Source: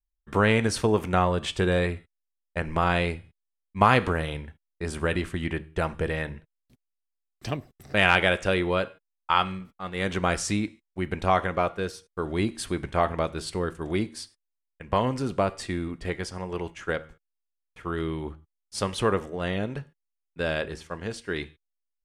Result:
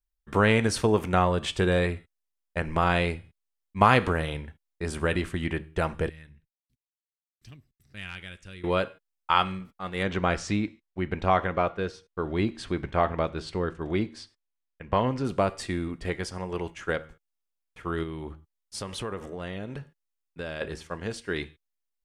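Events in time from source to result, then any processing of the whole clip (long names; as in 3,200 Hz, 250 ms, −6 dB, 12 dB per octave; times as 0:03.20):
0:06.09–0:08.64: guitar amp tone stack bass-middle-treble 6-0-2
0:10.03–0:15.25: high-frequency loss of the air 110 metres
0:18.03–0:20.61: downward compressor 3 to 1, threshold −33 dBFS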